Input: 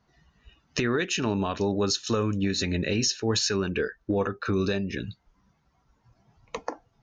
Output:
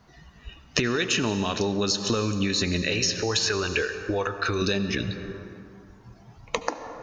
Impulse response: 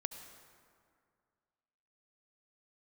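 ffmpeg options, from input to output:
-filter_complex "[0:a]asettb=1/sr,asplit=3[a][b][c];[a]atrim=end=2.824[d];[b]atrim=start=2.82:end=4.62,asetpts=PTS-STARTPTS,afade=t=in:d=0.004:c=qsin,afade=t=out:st=1.796:d=0.004:c=qsin,equalizer=f=200:w=1:g=-15[e];[c]atrim=start=4.616[f];[d][e]acrossfade=d=0.004:c1=hsin:c2=qsin[g];[g][f]acrossfade=d=0.004:c1=qsin:c2=hsin,asplit=2[h][i];[1:a]atrim=start_sample=2205[j];[i][j]afir=irnorm=-1:irlink=0,volume=4.5dB[k];[h][k]amix=inputs=2:normalize=0,acrossover=split=2700|6400[l][m][n];[l]acompressor=threshold=-29dB:ratio=4[o];[m]acompressor=threshold=-33dB:ratio=4[p];[n]acompressor=threshold=-41dB:ratio=4[q];[o][p][q]amix=inputs=3:normalize=0,volume=4dB"

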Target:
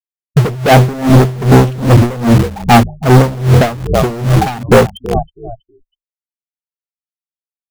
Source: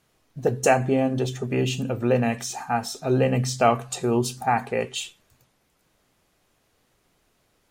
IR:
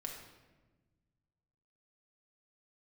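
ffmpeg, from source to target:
-filter_complex "[0:a]bass=f=250:g=8,treble=f=4k:g=-9,dynaudnorm=f=110:g=7:m=11dB,afftfilt=real='re*gte(hypot(re,im),0.355)':imag='im*gte(hypot(re,im),0.355)':win_size=1024:overlap=0.75,bandreject=f=50:t=h:w=6,bandreject=f=100:t=h:w=6,asplit=2[a][b];[b]asplit=3[c][d][e];[c]adelay=322,afreqshift=-40,volume=-21dB[f];[d]adelay=644,afreqshift=-80,volume=-28.3dB[g];[e]adelay=966,afreqshift=-120,volume=-35.7dB[h];[f][g][h]amix=inputs=3:normalize=0[i];[a][i]amix=inputs=2:normalize=0,acompressor=threshold=-15dB:ratio=20,adynamicequalizer=threshold=0.0158:dfrequency=700:dqfactor=4.7:tfrequency=700:tqfactor=4.7:attack=5:release=100:ratio=0.375:range=2.5:mode=cutabove:tftype=bell,afftdn=nr=23:nf=-38,asplit=2[j][k];[k]acrusher=bits=4:mix=0:aa=0.000001,volume=-6dB[l];[j][l]amix=inputs=2:normalize=0,asoftclip=type=hard:threshold=-23dB,alimiter=level_in=30.5dB:limit=-1dB:release=50:level=0:latency=1,aeval=exprs='val(0)*pow(10,-20*(0.5-0.5*cos(2*PI*2.5*n/s))/20)':c=same,volume=-1dB"

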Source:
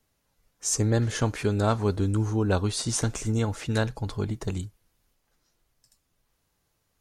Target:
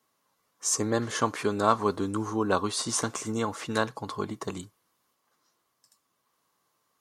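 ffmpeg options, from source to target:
-af "highpass=220,equalizer=f=1.1k:t=o:w=0.34:g=12,bandreject=f=2.5k:w=20"

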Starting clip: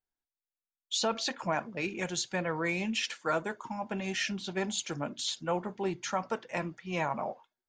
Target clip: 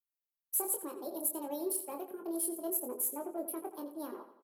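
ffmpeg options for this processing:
-filter_complex "[0:a]afwtdn=0.0112,firequalizer=gain_entry='entry(110,0);entry(200,6);entry(1000,-25);entry(6200,4)':delay=0.05:min_phase=1,acrossover=split=160|740[a][b][c];[a]acompressor=threshold=-49dB:ratio=6[d];[c]asoftclip=type=tanh:threshold=-35.5dB[e];[d][b][e]amix=inputs=3:normalize=0,aexciter=amount=12.1:drive=7:freq=5.4k,asplit=2[f][g];[g]asoftclip=type=hard:threshold=-28dB,volume=-11dB[h];[f][h]amix=inputs=2:normalize=0,asplit=2[i][j];[j]adelay=42,volume=-6dB[k];[i][k]amix=inputs=2:normalize=0,asplit=2[l][m];[m]adelay=150,lowpass=f=4.5k:p=1,volume=-11dB,asplit=2[n][o];[o]adelay=150,lowpass=f=4.5k:p=1,volume=0.47,asplit=2[p][q];[q]adelay=150,lowpass=f=4.5k:p=1,volume=0.47,asplit=2[r][s];[s]adelay=150,lowpass=f=4.5k:p=1,volume=0.47,asplit=2[t][u];[u]adelay=150,lowpass=f=4.5k:p=1,volume=0.47[v];[l][n][p][r][t][v]amix=inputs=6:normalize=0,asetrate=76440,aresample=44100,volume=-8dB"

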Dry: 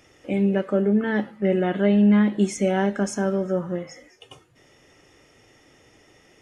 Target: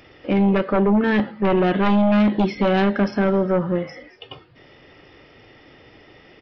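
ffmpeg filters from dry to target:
-af "aresample=11025,aresample=44100,aeval=exprs='0.376*sin(PI/2*2.51*val(0)/0.376)':c=same,volume=-4.5dB"

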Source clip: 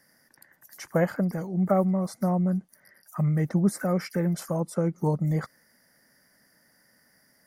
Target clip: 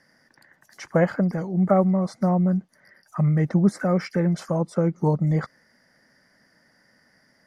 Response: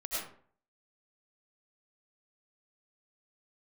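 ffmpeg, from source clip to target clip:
-af "lowpass=5.2k,volume=4dB"

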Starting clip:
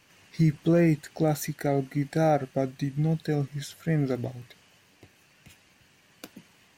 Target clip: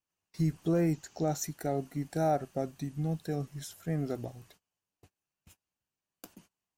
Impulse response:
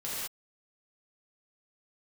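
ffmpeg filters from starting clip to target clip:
-filter_complex "[0:a]asettb=1/sr,asplit=3[a][b][c];[a]atrim=end=0.934[d];[b]atrim=start=0.93:end=1.44,asetpts=PTS-STARTPTS,afade=t=in:d=0.004:c=qsin,afade=t=out:st=0.506:d=0.004:c=qsin,highshelf=f=7.9k:t=q:w=3:g=-6.5[e];[c]atrim=start=1.436[f];[d][e]acrossfade=d=0.004:c1=hsin:c2=qsin[g];[g][f]acrossfade=d=0.004:c1=qsin:c2=hsin,agate=range=-26dB:threshold=-51dB:ratio=16:detection=peak,equalizer=f=125:t=o:w=1:g=-7,equalizer=f=250:t=o:w=1:g=-5,equalizer=f=500:t=o:w=1:g=-5,equalizer=f=2k:t=o:w=1:g=-11,equalizer=f=4k:t=o:w=1:g=-6"

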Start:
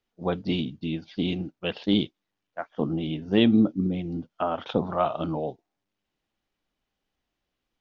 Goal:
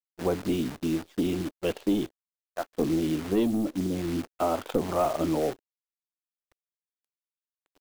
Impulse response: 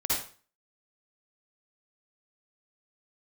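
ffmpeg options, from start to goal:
-af "asoftclip=type=tanh:threshold=-17dB,aemphasis=mode=reproduction:type=riaa,acrusher=bits=7:dc=4:mix=0:aa=0.000001,acompressor=threshold=-18dB:ratio=6,lowshelf=f=240:t=q:w=1.5:g=-9"

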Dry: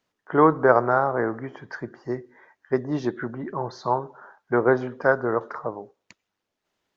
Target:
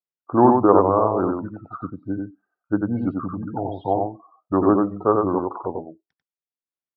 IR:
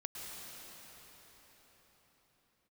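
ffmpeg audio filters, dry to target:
-af "afftdn=nr=30:nf=-35,asetrate=35002,aresample=44100,atempo=1.25992,aecho=1:1:93:0.668,volume=1.5dB"

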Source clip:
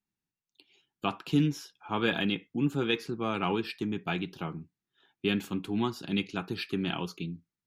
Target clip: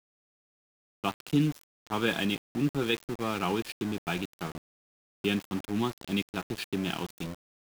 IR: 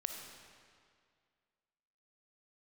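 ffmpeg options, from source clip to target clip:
-af "aeval=exprs='val(0)*gte(abs(val(0)),0.0168)':c=same"

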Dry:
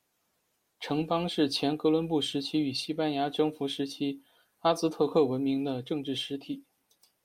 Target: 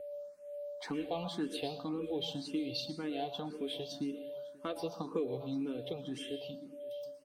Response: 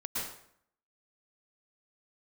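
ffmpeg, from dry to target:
-filter_complex "[0:a]aeval=exprs='val(0)+0.00794*sin(2*PI*580*n/s)':c=same,acompressor=threshold=-39dB:ratio=2,aecho=1:1:752:0.0794,asplit=2[a][b];[1:a]atrim=start_sample=2205[c];[b][c]afir=irnorm=-1:irlink=0,volume=-12dB[d];[a][d]amix=inputs=2:normalize=0,asplit=2[e][f];[f]afreqshift=1.9[g];[e][g]amix=inputs=2:normalize=1"

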